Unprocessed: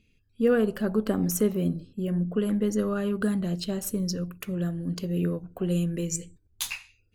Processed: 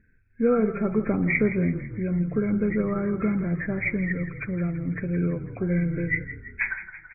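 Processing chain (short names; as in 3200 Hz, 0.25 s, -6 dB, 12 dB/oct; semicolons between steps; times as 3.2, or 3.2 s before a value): nonlinear frequency compression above 1300 Hz 4:1; low shelf 140 Hz +4.5 dB; frequency-shifting echo 0.166 s, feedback 58%, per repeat -32 Hz, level -12.5 dB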